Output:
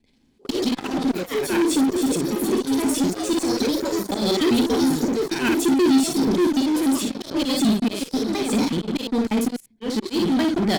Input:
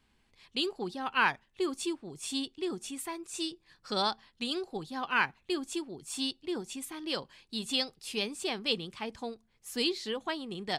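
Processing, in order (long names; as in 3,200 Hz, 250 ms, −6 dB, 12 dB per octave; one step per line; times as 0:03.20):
slices reordered back to front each 98 ms, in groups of 4
parametric band 1,200 Hz −11 dB 0.61 octaves
on a send: ambience of single reflections 23 ms −12 dB, 56 ms −5.5 dB
on the sum: volume swells 223 ms
delay with pitch and tempo change per echo 101 ms, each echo +4 semitones, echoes 3, each echo −6 dB
parametric band 250 Hz +14 dB 1.2 octaves
in parallel at −8 dB: fuzz pedal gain 35 dB, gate −44 dBFS
on the sum: notch filter 2,800 Hz, Q 17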